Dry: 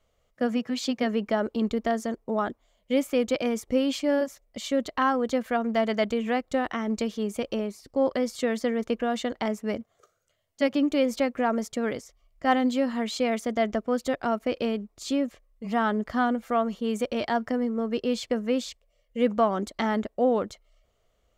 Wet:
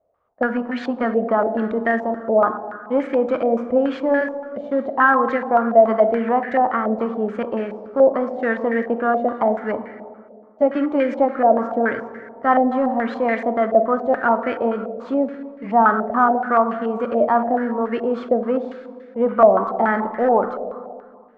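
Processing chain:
variable-slope delta modulation 64 kbit/s
high-pass filter 200 Hz 6 dB per octave
leveller curve on the samples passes 1
dense smooth reverb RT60 2 s, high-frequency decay 0.55×, DRR 7 dB
low-pass on a step sequencer 7 Hz 650–1,800 Hz
level +1 dB

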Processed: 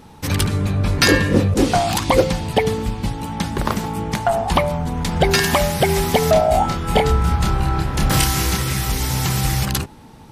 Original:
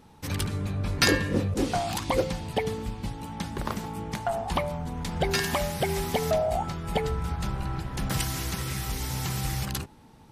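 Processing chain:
0:06.33–0:08.57: double-tracking delay 28 ms −3 dB
boost into a limiter +11.5 dB
level −1 dB

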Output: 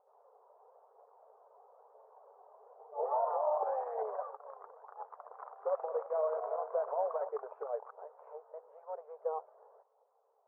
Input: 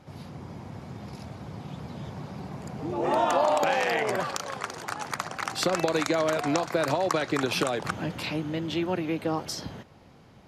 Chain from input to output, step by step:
phase shifter 1 Hz, delay 3.4 ms, feedback 34%
linear-phase brick-wall high-pass 410 Hz
0:05.05–0:07.29: echo machine with several playback heads 109 ms, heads second and third, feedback 40%, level −10.5 dB
brickwall limiter −17.5 dBFS, peak gain reduction 9 dB
Butterworth low-pass 1,100 Hz 36 dB per octave
expander for the loud parts 1.5 to 1, over −42 dBFS
level −4.5 dB

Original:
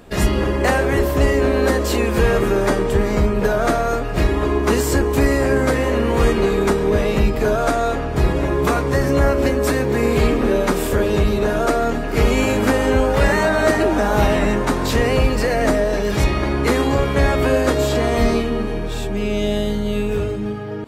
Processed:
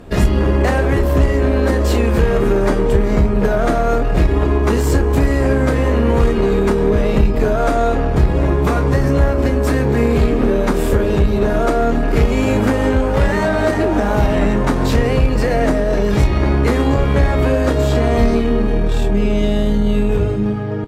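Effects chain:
harmonic generator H 2 −9 dB, 4 −18 dB, 8 −31 dB, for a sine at −5.5 dBFS
downward compressor, threshold −17 dBFS, peak gain reduction 7.5 dB
spectral tilt −1.5 dB per octave
double-tracking delay 30 ms −12 dB
level +3 dB

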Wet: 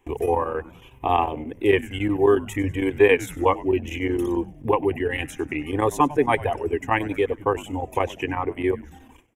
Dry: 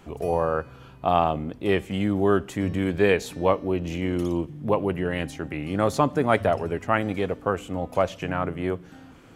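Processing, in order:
noise gate with hold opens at −39 dBFS
reverb reduction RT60 1.3 s
in parallel at +0.5 dB: downward compressor, threshold −38 dBFS, peak gain reduction 21 dB
on the sum: phaser with its sweep stopped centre 920 Hz, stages 8
square-wave tremolo 11 Hz, depth 60%, duty 85%
on a send: echo with shifted repeats 98 ms, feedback 49%, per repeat −150 Hz, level −18 dB
on the sum: level +5.5 dB

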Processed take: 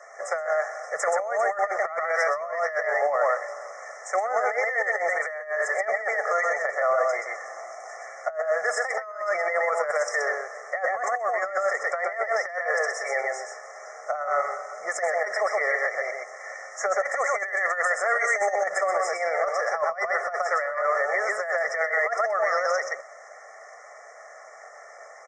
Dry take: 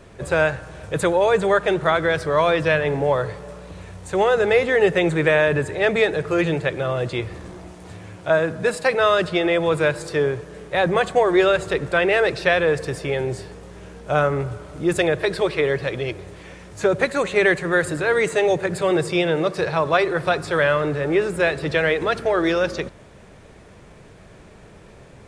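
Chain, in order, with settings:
elliptic band-pass filter 690–6,600 Hz, stop band 70 dB
parametric band 4,000 Hz +7.5 dB 0.29 octaves
comb filter 1.6 ms, depth 97%
single-tap delay 126 ms −4 dB
compressor whose output falls as the input rises −22 dBFS, ratio −0.5
brickwall limiter −13.5 dBFS, peak gain reduction 7 dB
brick-wall band-stop 2,300–5,100 Hz

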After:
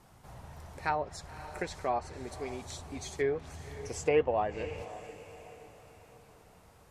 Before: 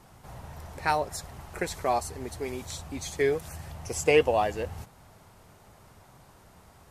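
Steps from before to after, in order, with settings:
feedback delay with all-pass diffusion 540 ms, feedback 44%, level −14.5 dB
treble cut that deepens with the level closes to 1,900 Hz, closed at −21 dBFS
level −5 dB

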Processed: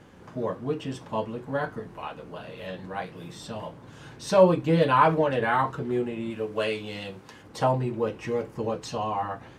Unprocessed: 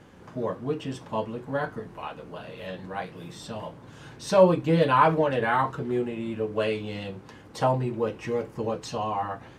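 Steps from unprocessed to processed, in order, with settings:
0:06.30–0:07.43: spectral tilt +1.5 dB per octave

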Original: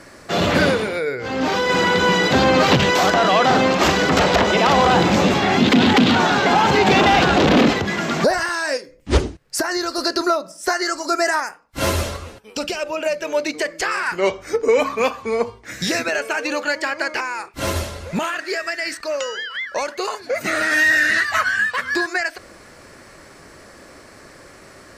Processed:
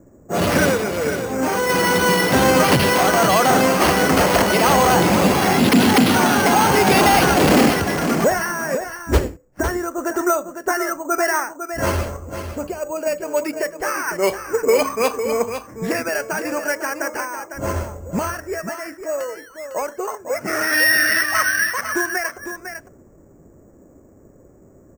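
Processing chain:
low-pass that shuts in the quiet parts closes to 350 Hz, open at −11 dBFS
bad sample-rate conversion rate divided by 6×, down filtered, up hold
on a send: single-tap delay 503 ms −9 dB

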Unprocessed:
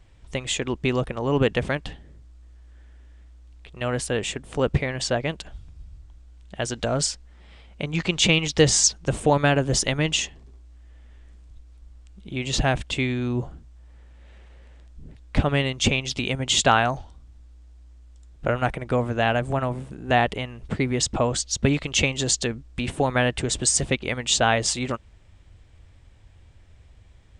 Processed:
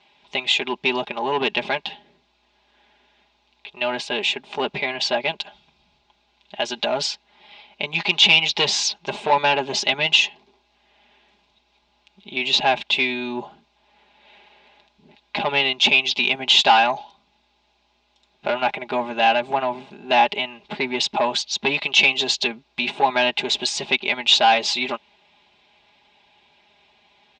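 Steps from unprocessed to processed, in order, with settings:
notch filter 1,800 Hz, Q 12
comb filter 4.9 ms, depth 73%
soft clipping −14.5 dBFS, distortion −13 dB
loudspeaker in its box 380–5,100 Hz, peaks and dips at 490 Hz −9 dB, 870 Hz +9 dB, 1,300 Hz −7 dB, 2,600 Hz +7 dB, 3,800 Hz +7 dB
level +3.5 dB

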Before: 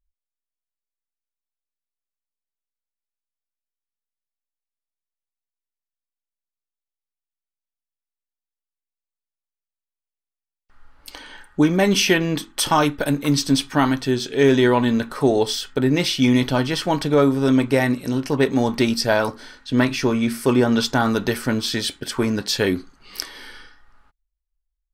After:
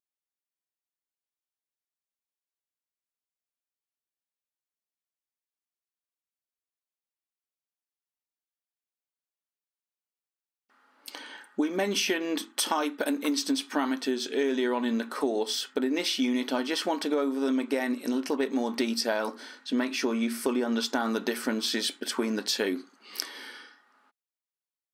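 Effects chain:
linear-phase brick-wall high-pass 200 Hz
downward compressor, threshold −21 dBFS, peak gain reduction 10 dB
level −3 dB

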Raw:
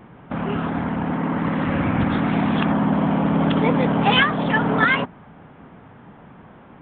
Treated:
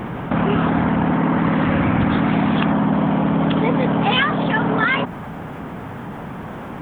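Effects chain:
speech leveller within 5 dB 2 s
bit-depth reduction 12 bits, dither none
envelope flattener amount 50%

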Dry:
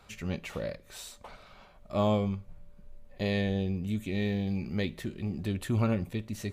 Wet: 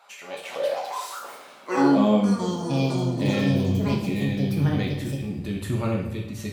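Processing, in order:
high-pass filter sweep 770 Hz → 69 Hz, 0:00.11–0:03.79
delay with pitch and tempo change per echo 296 ms, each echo +5 semitones, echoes 3
coupled-rooms reverb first 0.65 s, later 2.3 s, DRR −1 dB

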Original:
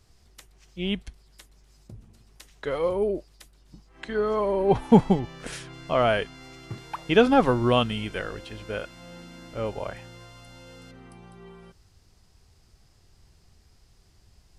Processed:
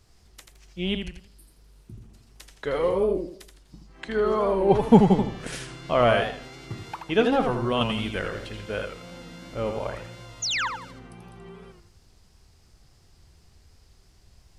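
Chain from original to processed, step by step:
0:01.28–0:01.97: healed spectral selection 370–8,400 Hz both
0:06.94–0:07.81: tuned comb filter 110 Hz, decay 0.27 s, harmonics all, mix 60%
0:10.42–0:10.68: sound drawn into the spectrogram fall 850–7,200 Hz −28 dBFS
feedback echo with a swinging delay time 82 ms, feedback 35%, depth 151 cents, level −6 dB
level +1 dB

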